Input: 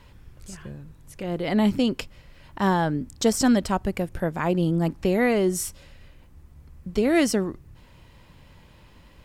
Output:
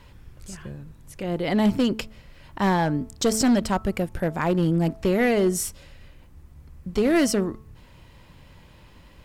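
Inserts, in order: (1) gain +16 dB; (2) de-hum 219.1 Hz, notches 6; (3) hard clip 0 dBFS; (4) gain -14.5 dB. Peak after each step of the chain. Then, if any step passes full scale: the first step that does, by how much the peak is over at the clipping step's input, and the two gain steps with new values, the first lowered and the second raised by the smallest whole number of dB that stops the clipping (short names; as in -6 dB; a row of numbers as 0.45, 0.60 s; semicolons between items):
+8.5, +8.5, 0.0, -14.5 dBFS; step 1, 8.5 dB; step 1 +7 dB, step 4 -5.5 dB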